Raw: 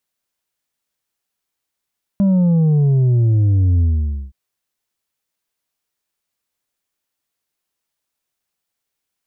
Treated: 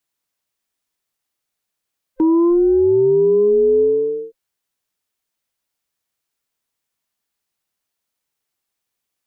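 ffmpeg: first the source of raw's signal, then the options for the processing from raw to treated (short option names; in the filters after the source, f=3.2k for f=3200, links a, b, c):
-f lavfi -i "aevalsrc='0.266*clip((2.12-t)/0.51,0,1)*tanh(1.68*sin(2*PI*200*2.12/log(65/200)*(exp(log(65/200)*t/2.12)-1)))/tanh(1.68)':d=2.12:s=44100"
-filter_complex "[0:a]afftfilt=real='real(if(between(b,1,1008),(2*floor((b-1)/24)+1)*24-b,b),0)':imag='imag(if(between(b,1,1008),(2*floor((b-1)/24)+1)*24-b,b),0)*if(between(b,1,1008),-1,1)':win_size=2048:overlap=0.75,acrossover=split=100[a][b];[a]alimiter=level_in=13dB:limit=-24dB:level=0:latency=1,volume=-13dB[c];[c][b]amix=inputs=2:normalize=0"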